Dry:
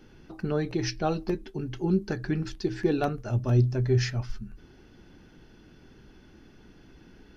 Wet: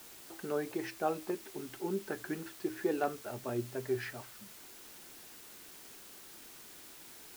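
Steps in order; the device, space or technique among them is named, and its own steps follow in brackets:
wax cylinder (band-pass filter 370–2,200 Hz; tape wow and flutter; white noise bed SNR 13 dB)
level −3.5 dB

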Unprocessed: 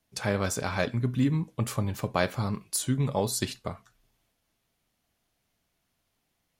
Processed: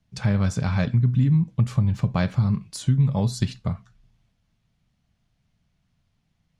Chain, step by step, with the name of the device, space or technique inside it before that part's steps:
jukebox (low-pass filter 6,100 Hz 12 dB per octave; low shelf with overshoot 240 Hz +11.5 dB, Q 1.5; downward compressor 3 to 1, threshold −17 dBFS, peak gain reduction 6 dB)

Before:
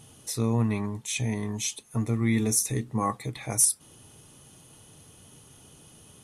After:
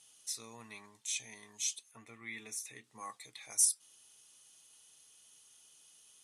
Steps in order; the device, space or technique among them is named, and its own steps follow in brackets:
piezo pickup straight into a mixer (low-pass filter 6,600 Hz 12 dB per octave; first difference)
0:01.91–0:02.84: high shelf with overshoot 3,600 Hz −9.5 dB, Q 1.5

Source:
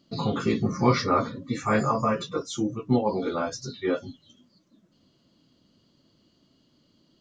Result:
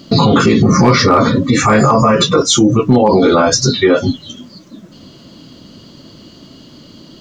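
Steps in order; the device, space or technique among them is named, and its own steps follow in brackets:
loud club master (downward compressor 1.5 to 1, threshold −29 dBFS, peak gain reduction 5.5 dB; hard clipping −17.5 dBFS, distortion −25 dB; boost into a limiter +26.5 dB)
level −1 dB

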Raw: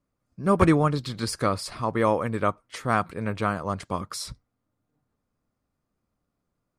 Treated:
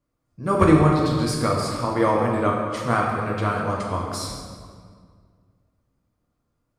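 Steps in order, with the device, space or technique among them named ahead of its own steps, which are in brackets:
stairwell (convolution reverb RT60 2.0 s, pre-delay 3 ms, DRR −2 dB)
level −1 dB

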